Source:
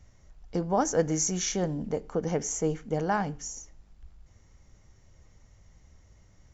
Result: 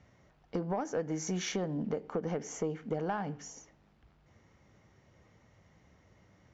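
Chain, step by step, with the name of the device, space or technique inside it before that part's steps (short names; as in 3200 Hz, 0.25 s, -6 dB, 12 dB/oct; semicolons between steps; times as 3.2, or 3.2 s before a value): AM radio (BPF 140–3300 Hz; compressor 10:1, threshold -31 dBFS, peak gain reduction 12.5 dB; soft clip -24.5 dBFS, distortion -20 dB); gain +2.5 dB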